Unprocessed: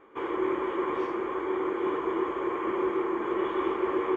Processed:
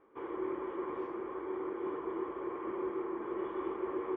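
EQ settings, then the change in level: low-pass 1.2 kHz 6 dB/octave; -8.0 dB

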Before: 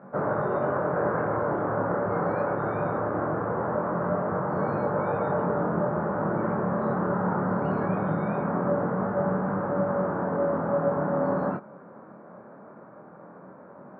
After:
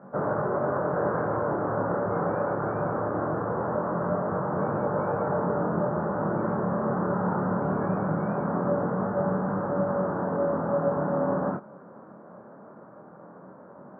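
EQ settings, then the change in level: low-pass 1.8 kHz 24 dB/octave; distance through air 140 m; 0.0 dB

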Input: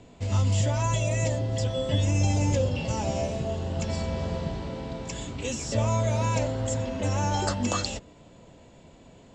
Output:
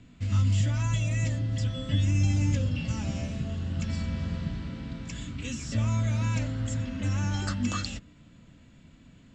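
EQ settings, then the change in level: high-order bell 600 Hz -14 dB; treble shelf 4.3 kHz -9 dB; 0.0 dB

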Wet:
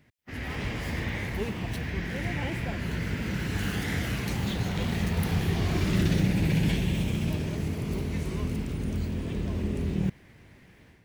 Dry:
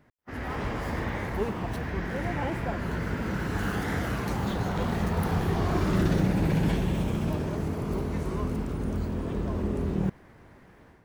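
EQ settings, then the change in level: peaking EQ 110 Hz +7 dB 2.8 oct; resonant high shelf 1.7 kHz +9 dB, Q 1.5; -5.5 dB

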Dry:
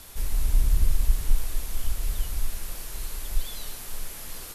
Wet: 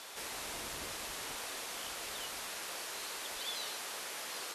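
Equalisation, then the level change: high-pass 480 Hz 12 dB/octave; distance through air 59 m; +4.0 dB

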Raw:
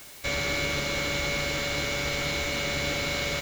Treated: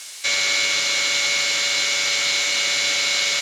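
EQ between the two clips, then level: frequency weighting ITU-R 468; +2.0 dB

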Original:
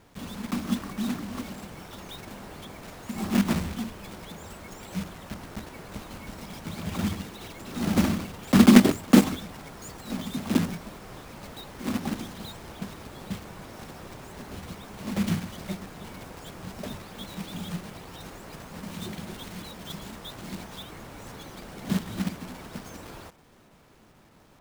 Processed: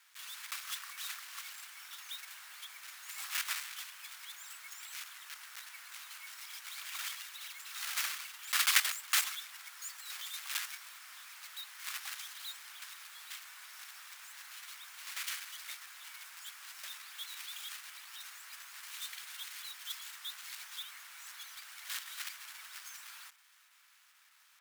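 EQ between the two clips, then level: high-pass 1.4 kHz 24 dB/octave; peaking EQ 16 kHz +4.5 dB 1.3 oct; -1.5 dB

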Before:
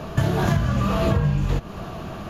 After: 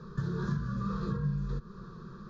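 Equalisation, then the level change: low-pass 4.1 kHz 12 dB/octave; static phaser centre 430 Hz, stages 8; static phaser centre 2.9 kHz, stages 6; -8.0 dB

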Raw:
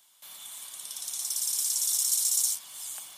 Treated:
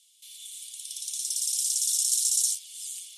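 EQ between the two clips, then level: steep high-pass 2.6 kHz 36 dB/octave; low-pass 11 kHz 24 dB/octave; +2.0 dB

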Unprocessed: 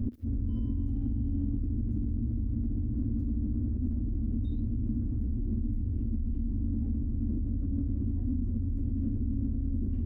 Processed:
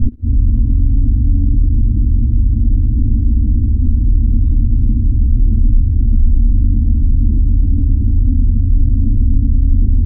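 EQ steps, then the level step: tilt EQ -4.5 dB/octave; +1.0 dB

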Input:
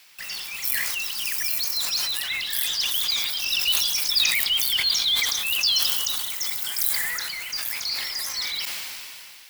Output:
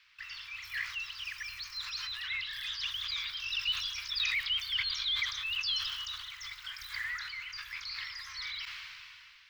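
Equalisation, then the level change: inverse Chebyshev band-stop 190–680 Hz, stop band 40 dB; distance through air 250 m; -4.0 dB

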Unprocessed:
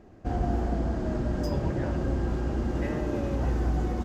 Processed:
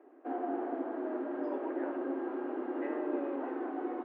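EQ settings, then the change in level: rippled Chebyshev high-pass 260 Hz, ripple 3 dB; low-pass 2.8 kHz 12 dB/octave; distance through air 460 m; 0.0 dB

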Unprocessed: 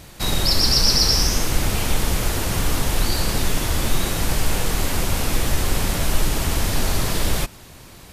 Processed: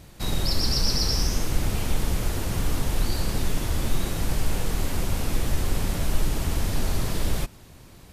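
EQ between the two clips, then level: bass shelf 500 Hz +6 dB; -9.0 dB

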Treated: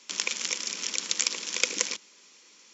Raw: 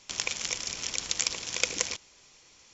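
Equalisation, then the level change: steep high-pass 180 Hz 72 dB/octave; peaking EQ 710 Hz -9 dB 0.45 oct; +2.0 dB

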